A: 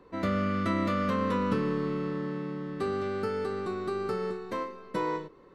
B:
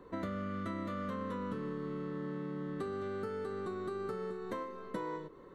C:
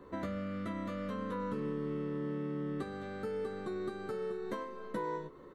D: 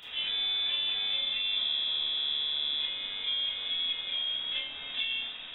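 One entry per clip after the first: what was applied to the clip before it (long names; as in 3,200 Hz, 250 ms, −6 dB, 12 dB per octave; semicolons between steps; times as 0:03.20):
thirty-one-band graphic EQ 800 Hz −3 dB, 2,500 Hz −8 dB, 5,000 Hz −10 dB; downward compressor 6 to 1, threshold −38 dBFS, peak gain reduction 14 dB; level +1.5 dB
double-tracking delay 14 ms −4.5 dB
linear delta modulator 64 kbit/s, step −42.5 dBFS; voice inversion scrambler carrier 3,700 Hz; four-comb reverb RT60 0.35 s, combs from 25 ms, DRR −8 dB; level −3 dB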